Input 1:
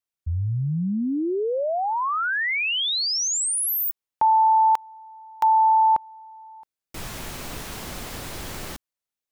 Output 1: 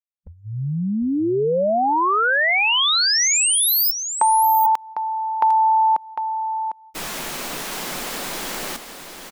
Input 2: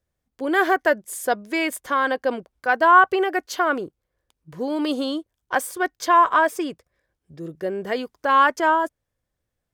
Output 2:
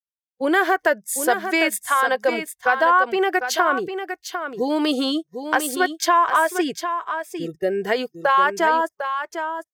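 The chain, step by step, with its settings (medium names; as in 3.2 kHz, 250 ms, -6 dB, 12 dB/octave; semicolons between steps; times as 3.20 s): gate -39 dBFS, range -25 dB; spectral noise reduction 23 dB; bass shelf 200 Hz -10.5 dB; compression 3:1, threshold -24 dBFS; delay 752 ms -8.5 dB; trim +7.5 dB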